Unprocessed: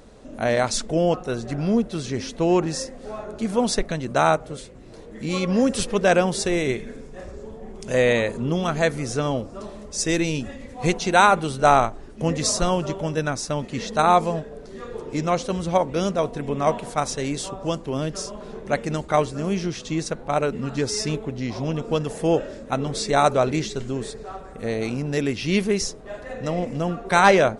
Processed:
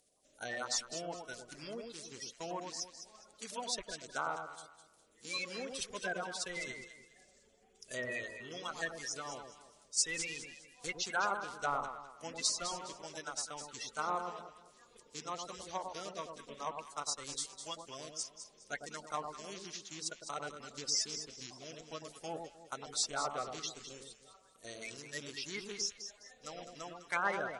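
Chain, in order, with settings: bin magnitudes rounded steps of 30 dB; treble ducked by the level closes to 1700 Hz, closed at -14.5 dBFS; reverb removal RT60 0.53 s; gate -31 dBFS, range -8 dB; pre-emphasis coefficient 0.97; on a send: echo with dull and thin repeats by turns 0.103 s, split 1100 Hz, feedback 54%, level -4.5 dB

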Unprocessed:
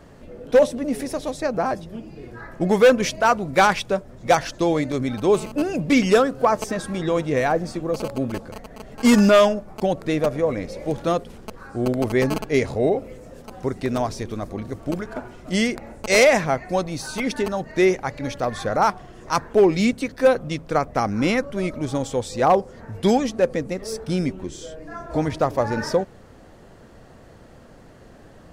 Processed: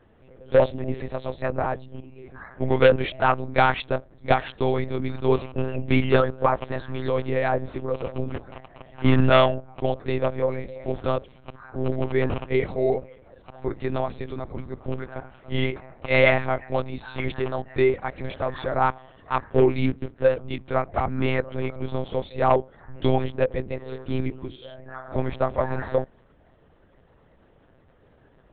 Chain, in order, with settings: 19.86–20.38 median filter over 41 samples; spectral noise reduction 8 dB; monotone LPC vocoder at 8 kHz 130 Hz; gain -2.5 dB

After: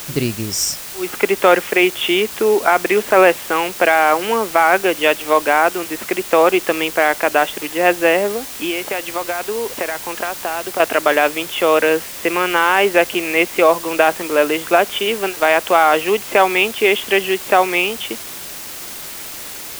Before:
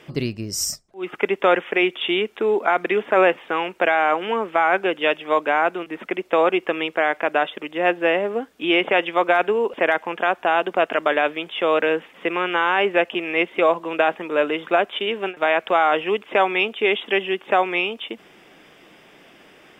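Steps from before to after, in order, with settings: 8.32–10.8 compressor, threshold -25 dBFS, peak gain reduction 12 dB; requantised 6-bit, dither triangular; gain +5 dB

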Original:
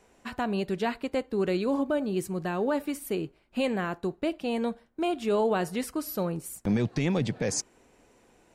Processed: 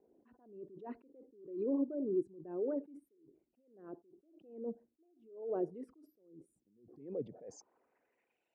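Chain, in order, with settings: formant sharpening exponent 2; band-pass sweep 330 Hz -> 3300 Hz, 6.91–8.49; attack slew limiter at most 100 dB/s; gain -1.5 dB

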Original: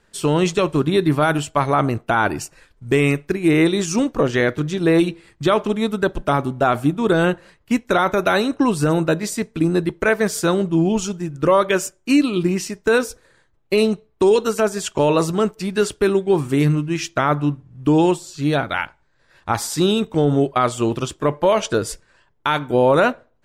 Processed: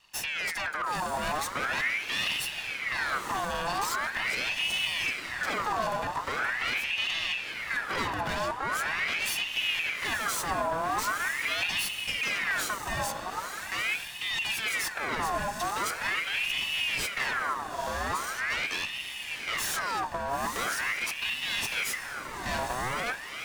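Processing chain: minimum comb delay 1.1 ms; negative-ratio compressor -21 dBFS, ratio -0.5; limiter -15 dBFS, peak gain reduction 9.5 dB; hard clip -25 dBFS, distortion -9 dB; diffused feedback echo 0.94 s, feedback 46%, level -5.5 dB; ring modulator with a swept carrier 1800 Hz, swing 55%, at 0.42 Hz; gain -1 dB

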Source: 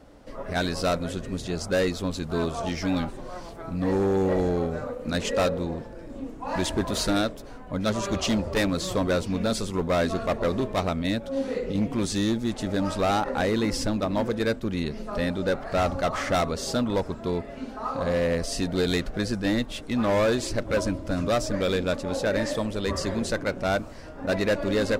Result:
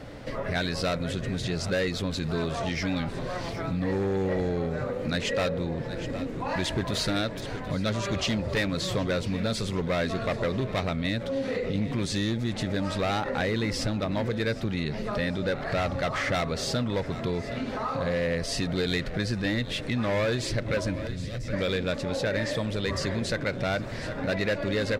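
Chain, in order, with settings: 21.07–21.53 passive tone stack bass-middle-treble 10-0-1; feedback echo 0.768 s, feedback 54%, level -20.5 dB; in parallel at +3 dB: limiter -29 dBFS, peak gain reduction 11.5 dB; on the sum: graphic EQ 125/500/2000/4000 Hz +12/+4/+9/+6 dB; compressor 2:1, threshold -28 dBFS, peak gain reduction 9.5 dB; gain -3 dB

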